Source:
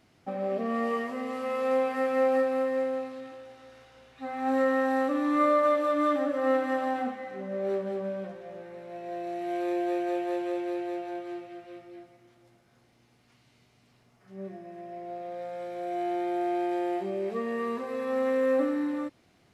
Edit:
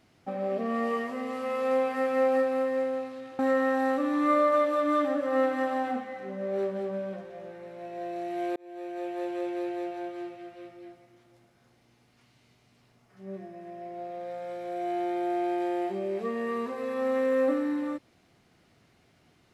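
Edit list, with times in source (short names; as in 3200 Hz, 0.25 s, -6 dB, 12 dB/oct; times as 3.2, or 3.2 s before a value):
3.39–4.5 cut
9.67–10.93 fade in equal-power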